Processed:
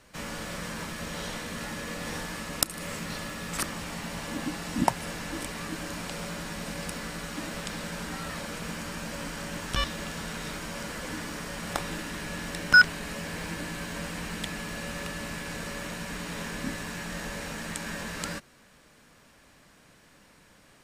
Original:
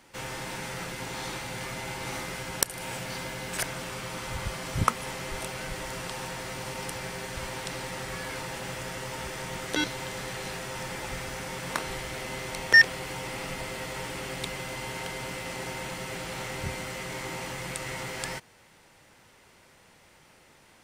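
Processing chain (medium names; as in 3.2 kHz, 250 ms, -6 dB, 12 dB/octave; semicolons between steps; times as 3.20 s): frequency shift -350 Hz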